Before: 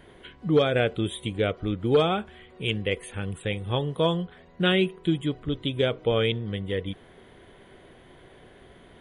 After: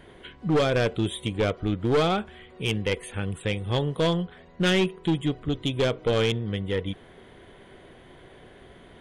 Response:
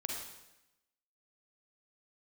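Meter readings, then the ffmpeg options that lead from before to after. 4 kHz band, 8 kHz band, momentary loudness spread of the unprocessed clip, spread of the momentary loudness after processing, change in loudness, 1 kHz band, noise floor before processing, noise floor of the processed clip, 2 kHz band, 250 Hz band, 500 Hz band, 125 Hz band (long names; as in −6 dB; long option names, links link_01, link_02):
0.0 dB, +6.0 dB, 10 LU, 9 LU, 0.0 dB, +0.5 dB, −52 dBFS, −51 dBFS, 0.0 dB, +1.0 dB, −0.5 dB, +1.5 dB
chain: -af "volume=19.5dB,asoftclip=hard,volume=-19.5dB,aresample=22050,aresample=44100,aeval=exprs='0.119*(cos(1*acos(clip(val(0)/0.119,-1,1)))-cos(1*PI/2))+0.0188*(cos(2*acos(clip(val(0)/0.119,-1,1)))-cos(2*PI/2))+0.00335*(cos(4*acos(clip(val(0)/0.119,-1,1)))-cos(4*PI/2))+0.000841*(cos(5*acos(clip(val(0)/0.119,-1,1)))-cos(5*PI/2))':channel_layout=same,volume=1.5dB"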